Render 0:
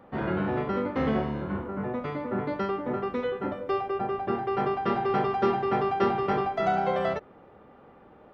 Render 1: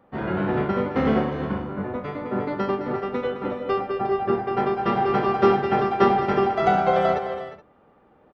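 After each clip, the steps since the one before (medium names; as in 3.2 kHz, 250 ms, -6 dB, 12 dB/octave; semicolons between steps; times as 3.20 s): on a send: multi-tap echo 92/212/355/424 ms -12.5/-9/-9.5/-12 dB; on the sum: upward expansion 1.5:1, over -43 dBFS; trim +6.5 dB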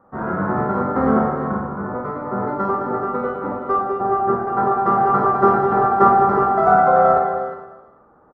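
resonant high shelf 1.9 kHz -13 dB, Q 3; on a send: reverse bouncing-ball echo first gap 50 ms, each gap 1.3×, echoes 5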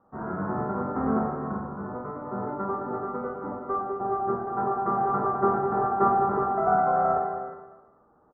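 low-pass 1.4 kHz 12 dB/octave; band-stop 530 Hz, Q 12; trim -8 dB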